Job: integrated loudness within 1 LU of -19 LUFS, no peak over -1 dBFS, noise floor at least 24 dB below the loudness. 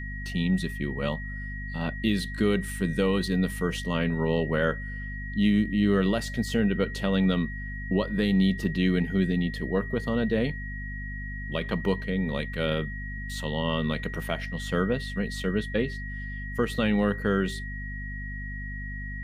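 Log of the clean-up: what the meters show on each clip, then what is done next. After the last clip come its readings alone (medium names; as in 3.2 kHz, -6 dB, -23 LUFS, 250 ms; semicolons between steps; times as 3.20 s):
hum 50 Hz; highest harmonic 250 Hz; hum level -34 dBFS; steady tone 1.9 kHz; tone level -38 dBFS; loudness -28.0 LUFS; peak level -12.0 dBFS; loudness target -19.0 LUFS
-> de-hum 50 Hz, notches 5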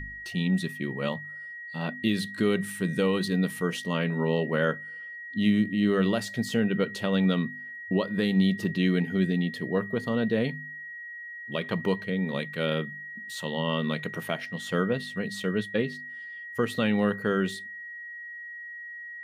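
hum not found; steady tone 1.9 kHz; tone level -38 dBFS
-> band-stop 1.9 kHz, Q 30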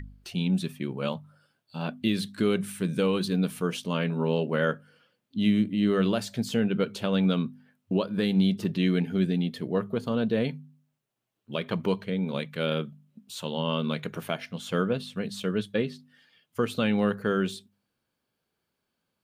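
steady tone not found; loudness -28.0 LUFS; peak level -12.5 dBFS; loudness target -19.0 LUFS
-> trim +9 dB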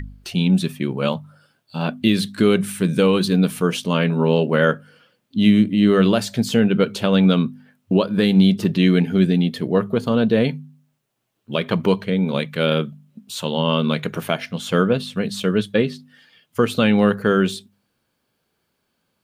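loudness -19.0 LUFS; peak level -3.5 dBFS; noise floor -72 dBFS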